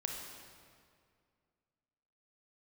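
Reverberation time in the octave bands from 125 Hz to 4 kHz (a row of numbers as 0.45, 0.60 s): 2.5, 2.4, 2.3, 2.1, 1.9, 1.6 s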